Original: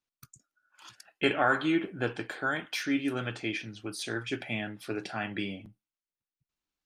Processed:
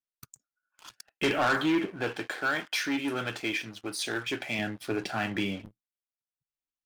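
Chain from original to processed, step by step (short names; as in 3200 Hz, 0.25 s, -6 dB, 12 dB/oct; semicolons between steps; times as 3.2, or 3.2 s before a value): sample leveller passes 3; 1.9–4.59 low shelf 220 Hz -10 dB; gain -6.5 dB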